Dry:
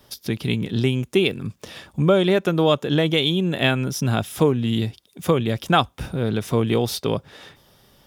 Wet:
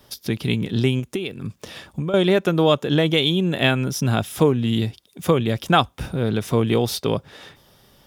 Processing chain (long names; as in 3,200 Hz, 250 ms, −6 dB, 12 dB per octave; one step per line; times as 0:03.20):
0:00.99–0:02.14: downward compressor 12 to 1, threshold −24 dBFS, peak gain reduction 13 dB
level +1 dB